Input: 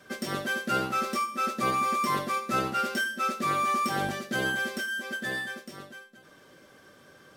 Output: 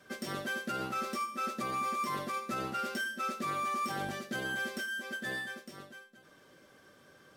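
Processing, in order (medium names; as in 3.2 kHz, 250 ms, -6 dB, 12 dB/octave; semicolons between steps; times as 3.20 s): peak limiter -22 dBFS, peak gain reduction 7 dB; trim -5 dB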